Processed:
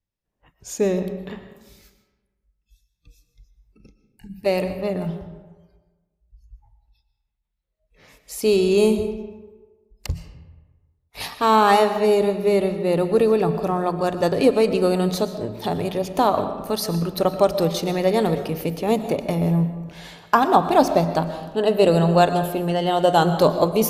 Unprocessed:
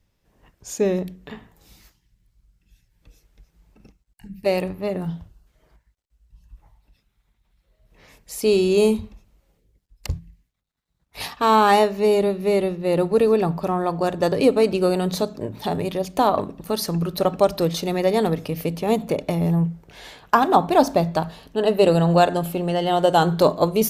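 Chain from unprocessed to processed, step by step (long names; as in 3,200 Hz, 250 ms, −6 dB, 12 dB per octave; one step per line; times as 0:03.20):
noise reduction from a noise print of the clip's start 19 dB
comb and all-pass reverb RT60 1.3 s, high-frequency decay 0.55×, pre-delay 80 ms, DRR 10 dB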